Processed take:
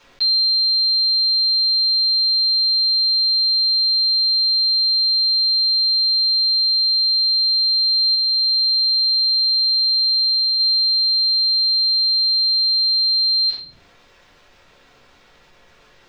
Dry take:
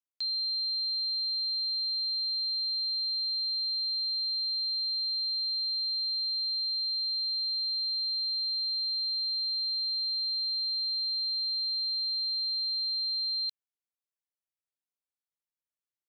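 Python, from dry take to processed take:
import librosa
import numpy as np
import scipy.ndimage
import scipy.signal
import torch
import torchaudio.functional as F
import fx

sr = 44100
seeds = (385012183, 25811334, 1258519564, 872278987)

y = fx.high_shelf(x, sr, hz=3900.0, db=-11.0, at=(8.14, 10.59))
y = fx.rider(y, sr, range_db=10, speed_s=0.5)
y = fx.air_absorb(y, sr, metres=200.0)
y = fx.room_shoebox(y, sr, seeds[0], volume_m3=160.0, walls='furnished', distance_m=4.4)
y = fx.env_flatten(y, sr, amount_pct=50)
y = y * librosa.db_to_amplitude(6.5)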